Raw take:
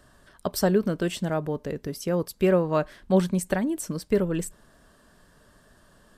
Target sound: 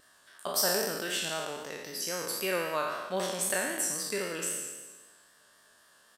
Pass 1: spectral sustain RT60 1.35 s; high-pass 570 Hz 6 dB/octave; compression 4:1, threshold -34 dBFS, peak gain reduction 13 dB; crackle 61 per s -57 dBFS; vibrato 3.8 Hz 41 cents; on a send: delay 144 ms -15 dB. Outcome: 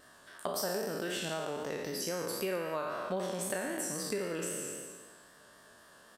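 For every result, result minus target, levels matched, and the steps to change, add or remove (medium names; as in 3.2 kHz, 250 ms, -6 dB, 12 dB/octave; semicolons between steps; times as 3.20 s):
compression: peak gain reduction +13 dB; 500 Hz band +3.5 dB
remove: compression 4:1, threshold -34 dBFS, peak gain reduction 13 dB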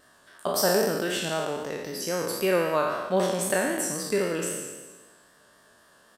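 500 Hz band +4.0 dB
change: high-pass 2 kHz 6 dB/octave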